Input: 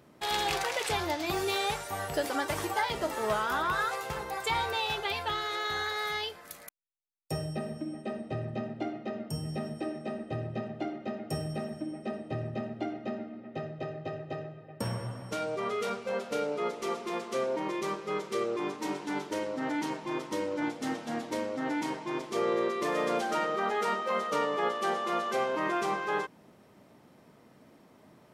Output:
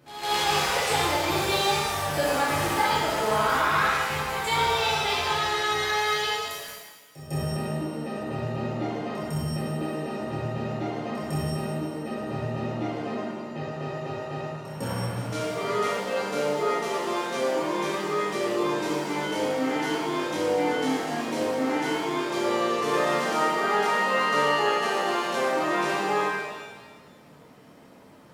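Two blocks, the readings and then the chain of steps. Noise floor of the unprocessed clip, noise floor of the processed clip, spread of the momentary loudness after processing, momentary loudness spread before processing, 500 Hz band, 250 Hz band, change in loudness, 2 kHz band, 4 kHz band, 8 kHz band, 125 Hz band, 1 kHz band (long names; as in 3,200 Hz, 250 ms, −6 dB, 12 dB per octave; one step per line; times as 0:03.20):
−58 dBFS, −50 dBFS, 10 LU, 9 LU, +5.5 dB, +5.5 dB, +6.5 dB, +7.5 dB, +7.5 dB, +8.0 dB, +7.0 dB, +7.0 dB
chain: echo ahead of the sound 154 ms −13.5 dB
reverb with rising layers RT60 1.3 s, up +7 semitones, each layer −8 dB, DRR −7.5 dB
level −2 dB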